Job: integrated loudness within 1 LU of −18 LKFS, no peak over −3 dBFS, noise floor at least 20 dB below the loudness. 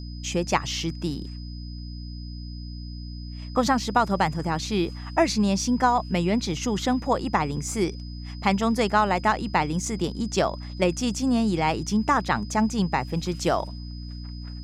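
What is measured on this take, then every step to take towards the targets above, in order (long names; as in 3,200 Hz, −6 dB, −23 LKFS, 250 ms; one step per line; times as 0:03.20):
mains hum 60 Hz; hum harmonics up to 300 Hz; level of the hum −34 dBFS; interfering tone 5,000 Hz; level of the tone −46 dBFS; integrated loudness −25.0 LKFS; sample peak −7.0 dBFS; target loudness −18.0 LKFS
→ mains-hum notches 60/120/180/240/300 Hz
notch filter 5,000 Hz, Q 30
level +7 dB
brickwall limiter −3 dBFS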